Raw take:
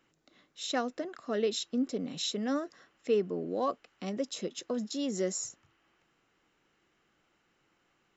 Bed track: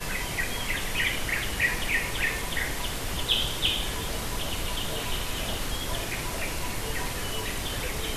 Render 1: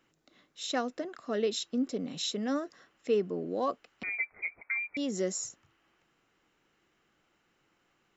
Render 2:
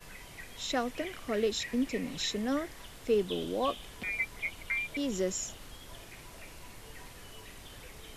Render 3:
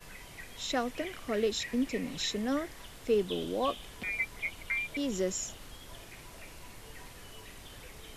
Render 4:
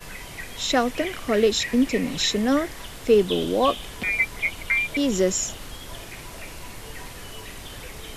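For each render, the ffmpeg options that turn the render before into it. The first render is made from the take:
-filter_complex "[0:a]asettb=1/sr,asplit=3[s0][s1][s2];[s0]atrim=end=4.034[s3];[s1]atrim=start=4.03:end=4.97,asetpts=PTS-STARTPTS,afade=t=in:d=0.004:c=qsin,afade=t=out:st=0.936:d=0.004:c=qsin,lowpass=f=2200:t=q:w=0.5098,lowpass=f=2200:t=q:w=0.6013,lowpass=f=2200:t=q:w=0.9,lowpass=f=2200:t=q:w=2.563,afreqshift=-2600[s4];[s2]atrim=start=4.966[s5];[s3][s4]acrossfade=d=0.004:c1=hsin:c2=qsin[s6];[s6][s5]acrossfade=d=0.004:c1=qsin:c2=hsin"
-filter_complex "[1:a]volume=0.133[s0];[0:a][s0]amix=inputs=2:normalize=0"
-af anull
-af "volume=3.35"

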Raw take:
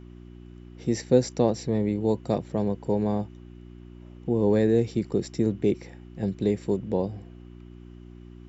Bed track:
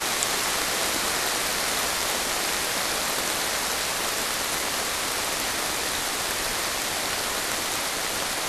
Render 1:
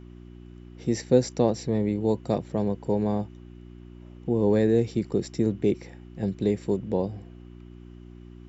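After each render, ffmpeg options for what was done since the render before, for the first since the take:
-af anull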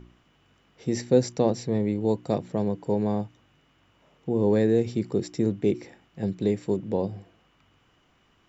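-af "bandreject=f=60:t=h:w=4,bandreject=f=120:t=h:w=4,bandreject=f=180:t=h:w=4,bandreject=f=240:t=h:w=4,bandreject=f=300:t=h:w=4,bandreject=f=360:t=h:w=4"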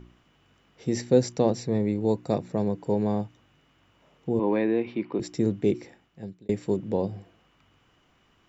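-filter_complex "[0:a]asettb=1/sr,asplit=3[s0][s1][s2];[s0]atrim=end=1.604[s3];[s1]atrim=start=1.6:end=2.78,asetpts=PTS-STARTPTS,afade=t=in:d=0.004:c=qsin,afade=t=out:st=1.176:d=0.004:c=qsin,asuperstop=centerf=3100:order=4:qfactor=7.4[s4];[s2]atrim=start=2.776[s5];[s3][s4]acrossfade=d=0.004:c1=hsin:c2=qsin[s6];[s6][s5]acrossfade=d=0.004:c1=qsin:c2=hsin,asettb=1/sr,asplit=3[s7][s8][s9];[s7]atrim=end=4.394[s10];[s8]atrim=start=4.39:end=5.2,asetpts=PTS-STARTPTS,afade=t=in:d=0.004:c=qsin,afade=t=out:st=0.806:d=0.004:c=qsin,highpass=270,equalizer=f=300:t=q:w=4:g=5,equalizer=f=440:t=q:w=4:g=-6,equalizer=f=1000:t=q:w=4:g=9,equalizer=f=2400:t=q:w=4:g=8,lowpass=f=3300:w=0.5412,lowpass=f=3300:w=1.3066[s11];[s9]atrim=start=5.196[s12];[s10][s11]acrossfade=d=0.004:c1=hsin:c2=qsin[s13];[s13][s12]acrossfade=d=0.004:c1=qsin:c2=hsin,asplit=2[s14][s15];[s14]atrim=end=6.49,asetpts=PTS-STARTPTS,afade=t=out:st=5.74:d=0.75[s16];[s15]atrim=start=6.49,asetpts=PTS-STARTPTS,afade=t=in:d=0.004:c=hsin[s17];[s16][s17]concat=n=2:v=0:a=1"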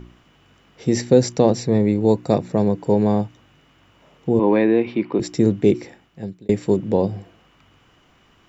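-af "volume=2.51,alimiter=limit=0.708:level=0:latency=1"

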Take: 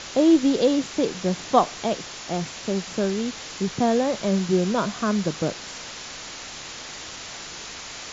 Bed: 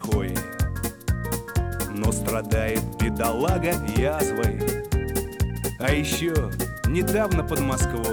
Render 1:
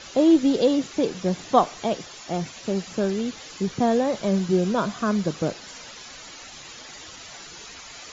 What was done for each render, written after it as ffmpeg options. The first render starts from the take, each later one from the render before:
-af "afftdn=nr=11:nf=-38"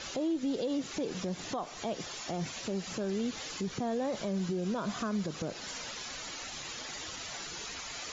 -af "acompressor=threshold=0.0501:ratio=4,alimiter=level_in=1.19:limit=0.0631:level=0:latency=1:release=79,volume=0.841"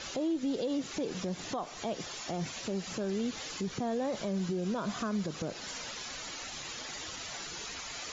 -af anull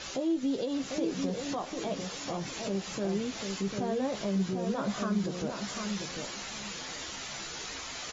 -filter_complex "[0:a]asplit=2[s0][s1];[s1]adelay=15,volume=0.447[s2];[s0][s2]amix=inputs=2:normalize=0,asplit=2[s3][s4];[s4]adelay=747,lowpass=f=3500:p=1,volume=0.562,asplit=2[s5][s6];[s6]adelay=747,lowpass=f=3500:p=1,volume=0.26,asplit=2[s7][s8];[s8]adelay=747,lowpass=f=3500:p=1,volume=0.26[s9];[s3][s5][s7][s9]amix=inputs=4:normalize=0"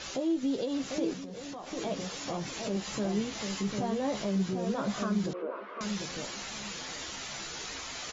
-filter_complex "[0:a]asettb=1/sr,asplit=3[s0][s1][s2];[s0]atrim=end=1.134[s3];[s1]atrim=start=1.13:end=1.72,asetpts=PTS-STARTPTS,afade=t=in:d=0.004:c=qsin,afade=t=out:st=0.586:d=0.004:c=qsin,acompressor=threshold=0.0141:ratio=12:attack=3.2:release=140:knee=1:detection=peak[s4];[s2]atrim=start=1.716[s5];[s3][s4]acrossfade=d=0.004:c1=hsin:c2=qsin[s6];[s6][s5]acrossfade=d=0.004:c1=qsin:c2=hsin,asettb=1/sr,asplit=3[s7][s8][s9];[s7]atrim=end=2.754[s10];[s8]atrim=start=2.75:end=4.23,asetpts=PTS-STARTPTS,afade=t=in:d=0.004:c=qsin,afade=t=out:st=1.476:d=0.004:c=qsin,asplit=2[s11][s12];[s12]adelay=14,volume=0.562[s13];[s11][s13]amix=inputs=2:normalize=0,atrim=end_sample=65268[s14];[s9]atrim=start=4.226[s15];[s10][s14]acrossfade=d=0.004:c1=hsin:c2=qsin[s16];[s16][s15]acrossfade=d=0.004:c1=qsin:c2=hsin,asettb=1/sr,asplit=3[s17][s18][s19];[s17]atrim=end=5.334[s20];[s18]atrim=start=5.33:end=5.81,asetpts=PTS-STARTPTS,afade=t=in:d=0.004:c=qsin,afade=t=out:st=0.476:d=0.004:c=qsin,highpass=f=350:w=0.5412,highpass=f=350:w=1.3066,equalizer=f=360:t=q:w=4:g=4,equalizer=f=530:t=q:w=4:g=4,equalizer=f=770:t=q:w=4:g=-10,equalizer=f=1100:t=q:w=4:g=5,equalizer=f=1800:t=q:w=4:g=-7,lowpass=f=2000:w=0.5412,lowpass=f=2000:w=1.3066[s21];[s19]atrim=start=5.806[s22];[s20][s21]acrossfade=d=0.004:c1=hsin:c2=qsin[s23];[s23][s22]acrossfade=d=0.004:c1=qsin:c2=hsin"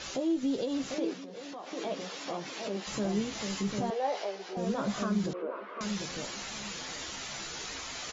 -filter_complex "[0:a]asettb=1/sr,asplit=3[s0][s1][s2];[s0]atrim=end=0.944[s3];[s1]atrim=start=0.94:end=2.87,asetpts=PTS-STARTPTS,afade=t=in:d=0.004:c=qsin,afade=t=out:st=1.926:d=0.004:c=qsin,highpass=260,lowpass=5400[s4];[s2]atrim=start=2.866[s5];[s3][s4]acrossfade=d=0.004:c1=hsin:c2=qsin[s6];[s6][s5]acrossfade=d=0.004:c1=qsin:c2=hsin,asettb=1/sr,asplit=3[s7][s8][s9];[s7]atrim=end=3.904[s10];[s8]atrim=start=3.9:end=4.57,asetpts=PTS-STARTPTS,afade=t=in:d=0.004:c=qsin,afade=t=out:st=0.666:d=0.004:c=qsin,highpass=f=430:w=0.5412,highpass=f=430:w=1.3066,equalizer=f=440:t=q:w=4:g=3,equalizer=f=790:t=q:w=4:g=8,equalizer=f=1100:t=q:w=4:g=-4,equalizer=f=3600:t=q:w=4:g=-3,lowpass=f=5500:w=0.5412,lowpass=f=5500:w=1.3066[s11];[s9]atrim=start=4.566[s12];[s10][s11]acrossfade=d=0.004:c1=hsin:c2=qsin[s13];[s13][s12]acrossfade=d=0.004:c1=qsin:c2=hsin"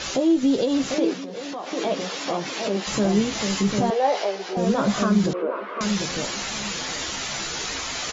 -af "volume=3.35"

